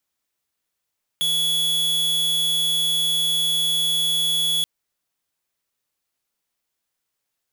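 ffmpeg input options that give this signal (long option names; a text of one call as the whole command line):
ffmpeg -f lavfi -i "aevalsrc='0.0891*(2*lt(mod(3380*t,1),0.5)-1)':duration=3.43:sample_rate=44100" out.wav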